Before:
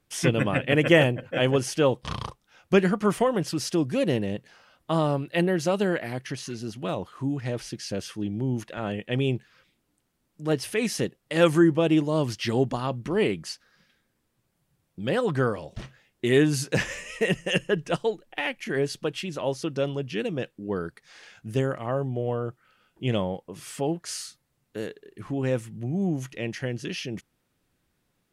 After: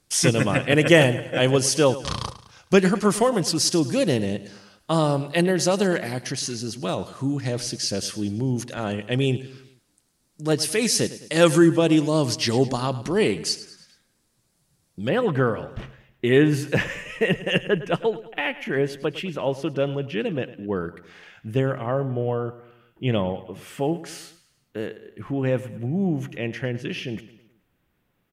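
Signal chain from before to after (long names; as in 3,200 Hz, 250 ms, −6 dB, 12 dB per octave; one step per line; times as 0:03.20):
flat-topped bell 6,600 Hz +8.5 dB, from 0:15.07 −9 dB
repeating echo 106 ms, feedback 49%, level −16 dB
level +3 dB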